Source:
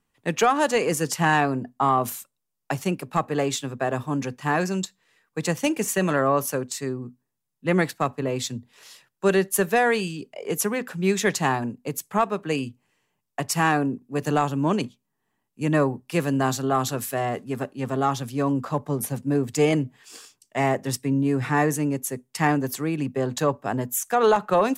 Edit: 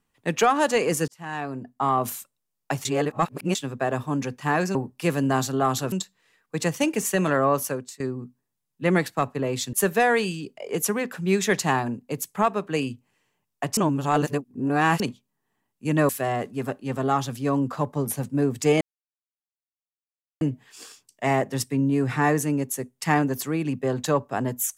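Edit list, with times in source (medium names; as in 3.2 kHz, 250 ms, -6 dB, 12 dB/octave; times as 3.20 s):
1.08–2.12 s: fade in
2.85–3.55 s: reverse
6.35–6.83 s: fade out equal-power, to -21 dB
8.56–9.49 s: delete
13.53–14.76 s: reverse
15.85–17.02 s: move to 4.75 s
19.74 s: insert silence 1.60 s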